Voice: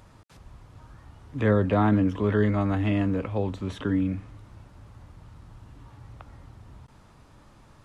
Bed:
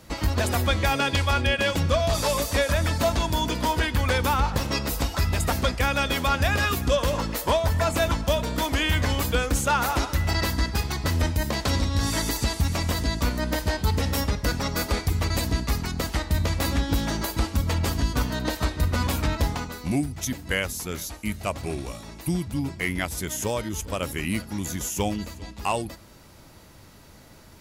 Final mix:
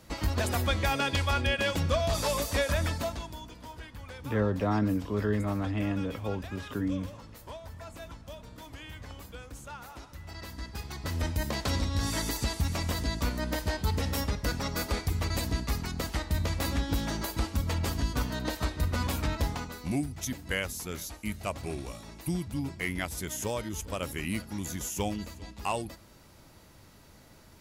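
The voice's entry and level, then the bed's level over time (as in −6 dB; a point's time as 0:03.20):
2.90 s, −6.0 dB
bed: 0:02.85 −5 dB
0:03.50 −21.5 dB
0:10.15 −21.5 dB
0:11.37 −5.5 dB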